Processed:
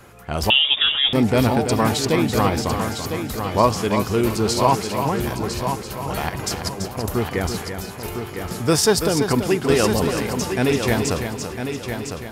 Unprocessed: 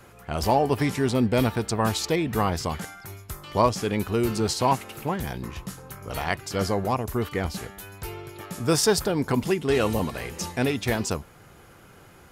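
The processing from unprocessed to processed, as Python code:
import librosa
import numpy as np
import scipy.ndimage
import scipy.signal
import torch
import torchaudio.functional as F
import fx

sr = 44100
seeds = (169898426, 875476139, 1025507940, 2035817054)

y = fx.over_compress(x, sr, threshold_db=-31.0, ratio=-0.5, at=(6.29, 7.09))
y = fx.cheby1_highpass(y, sr, hz=350.0, order=10, at=(7.62, 8.06))
y = fx.echo_heads(y, sr, ms=335, heads='first and third', feedback_pct=46, wet_db=-8.0)
y = fx.freq_invert(y, sr, carrier_hz=3600, at=(0.5, 1.13))
y = y * librosa.db_to_amplitude(4.0)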